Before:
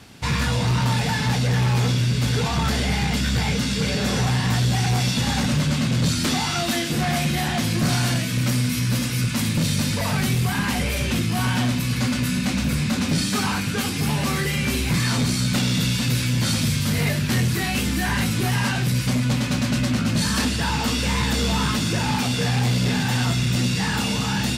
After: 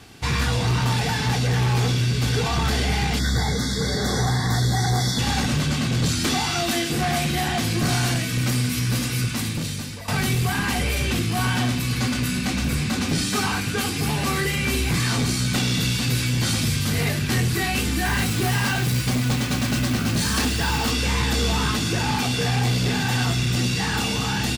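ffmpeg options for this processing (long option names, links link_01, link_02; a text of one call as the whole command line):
ffmpeg -i in.wav -filter_complex "[0:a]asettb=1/sr,asplit=3[link_01][link_02][link_03];[link_01]atrim=end=3.194[link_04];[link_02]atrim=start=3.19:end=5.19,asetpts=PTS-STARTPTS,afade=type=in:duration=0.004:curve=qsin,afade=type=out:start_time=1.996:duration=0.004:curve=qsin,asuperstop=centerf=2700:order=20:qfactor=2.3[link_05];[link_03]atrim=start=5.186[link_06];[link_04][link_05]acrossfade=duration=0.004:curve1=hsin:curve2=qsin[link_07];[link_07][link_06]acrossfade=duration=0.004:curve1=qsin:curve2=hsin,asettb=1/sr,asplit=3[link_08][link_09][link_10];[link_08]atrim=end=18.054[link_11];[link_09]atrim=start=18.05:end=20.91,asetpts=PTS-STARTPTS,afade=type=in:duration=0.004:curve=qsin,afade=type=out:start_time=2.856:duration=0.004:curve=qsin,acrusher=bits=3:mode=log:mix=0:aa=0.000001[link_12];[link_10]atrim=start=20.906[link_13];[link_11][link_12]acrossfade=duration=0.004:curve1=hsin:curve2=qsin[link_14];[link_14][link_13]acrossfade=duration=0.004:curve1=qsin:curve2=hsin,asplit=2[link_15][link_16];[link_15]atrim=end=10.08,asetpts=PTS-STARTPTS,afade=type=out:start_time=9.17:duration=0.91:silence=0.177828[link_17];[link_16]atrim=start=10.08,asetpts=PTS-STARTPTS,afade=type=in:duration=0.004:curve=hsin:silence=0.177828[link_18];[link_17][link_18]concat=n=2:v=0:a=1,aecho=1:1:2.6:0.34" out.wav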